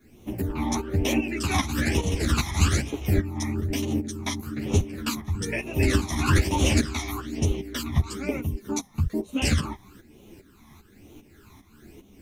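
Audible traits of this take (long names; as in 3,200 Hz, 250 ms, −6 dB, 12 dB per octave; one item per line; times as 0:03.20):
phaser sweep stages 12, 1.1 Hz, lowest notch 470–1,600 Hz
a quantiser's noise floor 12 bits, dither none
tremolo saw up 2.5 Hz, depth 75%
a shimmering, thickened sound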